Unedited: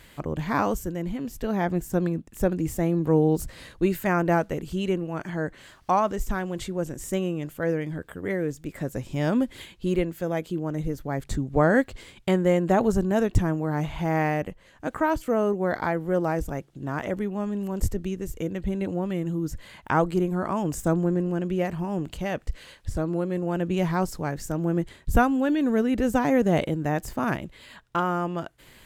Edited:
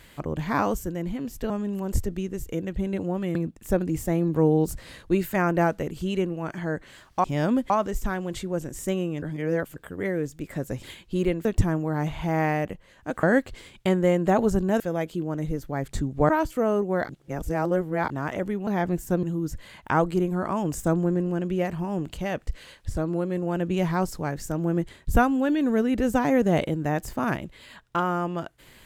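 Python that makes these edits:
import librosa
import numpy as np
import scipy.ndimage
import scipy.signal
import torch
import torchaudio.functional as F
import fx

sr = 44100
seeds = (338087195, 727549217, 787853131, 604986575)

y = fx.edit(x, sr, fx.swap(start_s=1.5, length_s=0.56, other_s=17.38, other_length_s=1.85),
    fx.reverse_span(start_s=7.47, length_s=0.54),
    fx.move(start_s=9.08, length_s=0.46, to_s=5.95),
    fx.swap(start_s=10.16, length_s=1.49, other_s=13.22, other_length_s=1.78),
    fx.reverse_span(start_s=15.8, length_s=1.01), tone=tone)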